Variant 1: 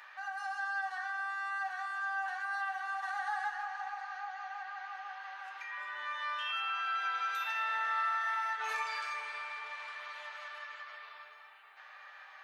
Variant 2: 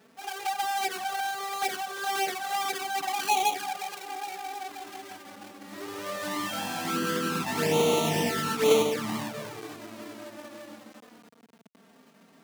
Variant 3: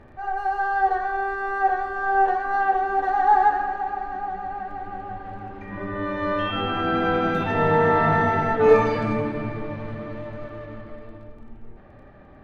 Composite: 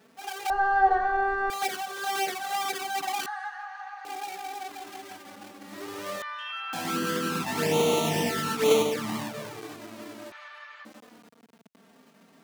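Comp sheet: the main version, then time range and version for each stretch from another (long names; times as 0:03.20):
2
0:00.50–0:01.50: punch in from 3
0:03.26–0:04.05: punch in from 1
0:06.22–0:06.73: punch in from 1
0:10.32–0:10.85: punch in from 1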